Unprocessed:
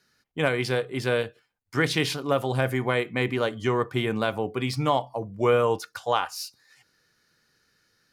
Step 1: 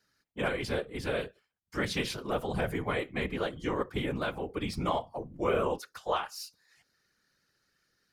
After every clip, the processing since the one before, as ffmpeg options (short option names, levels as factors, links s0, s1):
-af "afftfilt=real='hypot(re,im)*cos(2*PI*random(0))':imag='hypot(re,im)*sin(2*PI*random(1))':win_size=512:overlap=0.75,volume=0.891"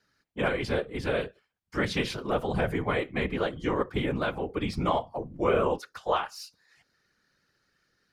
-af "lowpass=f=4000:p=1,volume=1.58"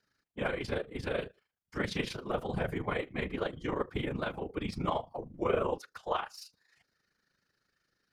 -af "tremolo=f=26:d=0.621,volume=0.708"